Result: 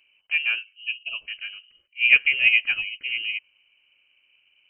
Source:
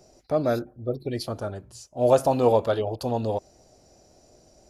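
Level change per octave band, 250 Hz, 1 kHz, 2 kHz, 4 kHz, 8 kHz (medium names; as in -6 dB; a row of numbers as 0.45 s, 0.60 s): under -30 dB, under -20 dB, +24.5 dB, +15.0 dB, under -35 dB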